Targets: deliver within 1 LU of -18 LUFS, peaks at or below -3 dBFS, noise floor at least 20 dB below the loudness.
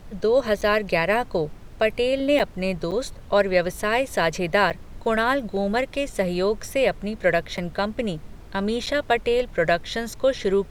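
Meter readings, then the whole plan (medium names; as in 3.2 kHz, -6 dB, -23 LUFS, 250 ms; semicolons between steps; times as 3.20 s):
dropouts 6; longest dropout 7.5 ms; noise floor -42 dBFS; noise floor target -44 dBFS; loudness -23.5 LUFS; peak level -6.5 dBFS; loudness target -18.0 LUFS
-> interpolate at 0.61/2.39/2.91/4.70/7.57/8.86 s, 7.5 ms; noise print and reduce 6 dB; trim +5.5 dB; peak limiter -3 dBFS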